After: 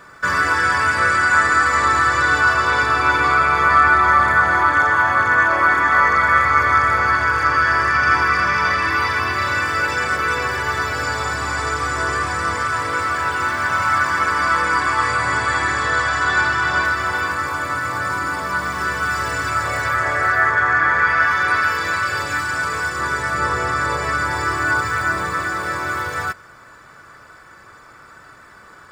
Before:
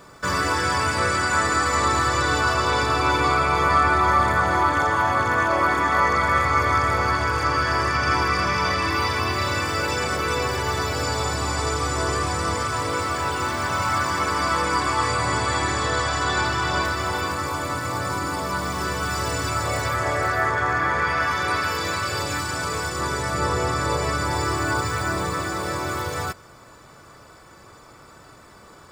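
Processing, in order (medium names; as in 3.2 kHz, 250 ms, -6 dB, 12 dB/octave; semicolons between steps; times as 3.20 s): peaking EQ 1.6 kHz +12.5 dB 1 oct; trim -2.5 dB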